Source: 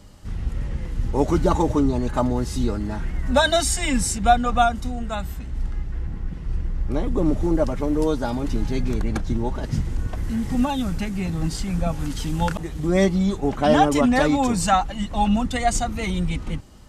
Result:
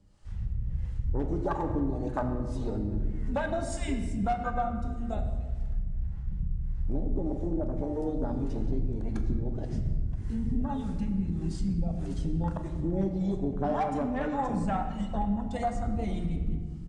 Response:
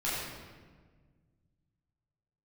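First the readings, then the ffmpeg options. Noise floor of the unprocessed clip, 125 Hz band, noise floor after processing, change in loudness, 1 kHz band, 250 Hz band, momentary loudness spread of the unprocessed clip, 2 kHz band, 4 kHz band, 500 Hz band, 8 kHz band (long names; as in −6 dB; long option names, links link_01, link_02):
−33 dBFS, −6.0 dB, −36 dBFS, −9.0 dB, −11.0 dB, −8.5 dB, 12 LU, −15.0 dB, −22.0 dB, −10.5 dB, −21.5 dB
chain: -filter_complex "[0:a]bandreject=frequency=60:width_type=h:width=6,bandreject=frequency=120:width_type=h:width=6,bandreject=frequency=180:width_type=h:width=6,bandreject=frequency=240:width_type=h:width=6,afwtdn=0.0794,acontrast=30,acrossover=split=470[link_01][link_02];[link_01]aeval=exprs='val(0)*(1-0.7/2+0.7/2*cos(2*PI*1.7*n/s))':channel_layout=same[link_03];[link_02]aeval=exprs='val(0)*(1-0.7/2-0.7/2*cos(2*PI*1.7*n/s))':channel_layout=same[link_04];[link_03][link_04]amix=inputs=2:normalize=0,asoftclip=type=hard:threshold=-8.5dB,acompressor=threshold=-25dB:ratio=6,asplit=2[link_05][link_06];[1:a]atrim=start_sample=2205[link_07];[link_06][link_07]afir=irnorm=-1:irlink=0,volume=-11dB[link_08];[link_05][link_08]amix=inputs=2:normalize=0,aresample=22050,aresample=44100,volume=-4dB"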